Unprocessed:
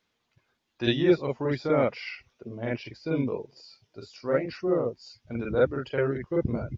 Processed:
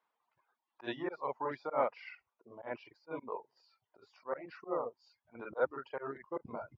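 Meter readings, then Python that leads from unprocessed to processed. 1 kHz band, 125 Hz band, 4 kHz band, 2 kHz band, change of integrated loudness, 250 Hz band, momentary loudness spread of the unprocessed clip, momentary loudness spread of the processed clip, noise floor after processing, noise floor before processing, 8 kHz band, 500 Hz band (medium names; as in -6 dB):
-2.0 dB, -24.5 dB, -17.5 dB, -10.0 dB, -11.5 dB, -18.0 dB, 16 LU, 15 LU, under -85 dBFS, -77 dBFS, no reading, -11.5 dB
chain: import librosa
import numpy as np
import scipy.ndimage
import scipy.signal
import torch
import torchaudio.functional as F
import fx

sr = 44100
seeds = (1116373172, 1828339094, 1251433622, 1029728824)

y = fx.auto_swell(x, sr, attack_ms=101.0)
y = fx.bandpass_q(y, sr, hz=960.0, q=3.0)
y = fx.dereverb_blind(y, sr, rt60_s=0.81)
y = y * librosa.db_to_amplitude(4.5)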